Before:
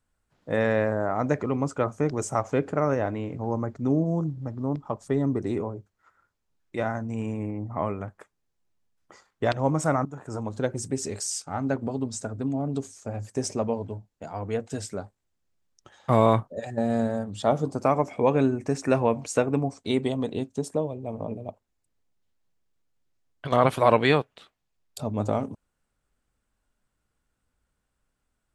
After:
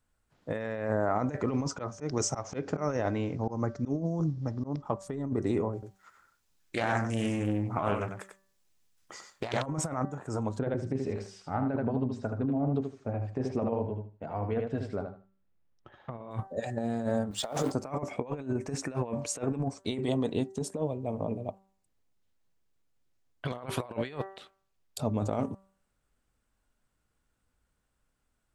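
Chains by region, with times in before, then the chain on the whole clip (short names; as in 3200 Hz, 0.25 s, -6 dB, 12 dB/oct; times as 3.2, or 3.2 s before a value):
1.48–4.82 synth low-pass 5600 Hz, resonance Q 3.5 + auto swell 0.164 s
5.73–9.66 high shelf 2000 Hz +11.5 dB + echo 95 ms -7.5 dB + Doppler distortion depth 0.44 ms
10.59–16.31 air absorption 380 m + feedback echo 77 ms, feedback 21%, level -6.5 dB
17.31–17.72 G.711 law mismatch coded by mu + HPF 720 Hz 6 dB/oct + transient shaper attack +5 dB, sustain +12 dB
whole clip: de-hum 193.3 Hz, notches 10; negative-ratio compressor -27 dBFS, ratio -0.5; gain -2.5 dB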